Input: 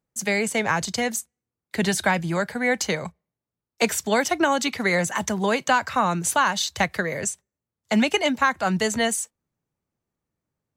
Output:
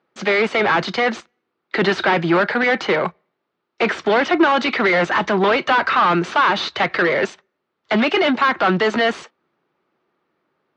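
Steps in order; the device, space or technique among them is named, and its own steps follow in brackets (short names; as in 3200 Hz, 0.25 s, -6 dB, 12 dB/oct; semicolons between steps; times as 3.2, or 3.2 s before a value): 2.77–4.43 dynamic EQ 4900 Hz, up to -5 dB, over -41 dBFS, Q 0.84; overdrive pedal into a guitar cabinet (overdrive pedal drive 28 dB, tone 2600 Hz, clips at -7 dBFS; speaker cabinet 97–4300 Hz, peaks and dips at 110 Hz -10 dB, 360 Hz +8 dB, 1300 Hz +5 dB); gain -2.5 dB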